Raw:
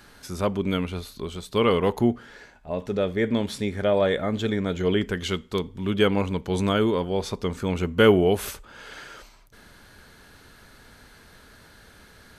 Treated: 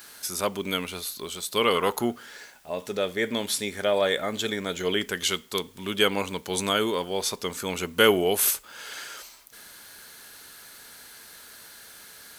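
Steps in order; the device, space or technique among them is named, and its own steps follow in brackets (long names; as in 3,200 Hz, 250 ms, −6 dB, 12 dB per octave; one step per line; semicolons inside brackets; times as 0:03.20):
turntable without a phono preamp (RIAA equalisation recording; white noise bed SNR 31 dB)
0:01.75–0:02.15: parametric band 1,300 Hz +10.5 dB 0.41 octaves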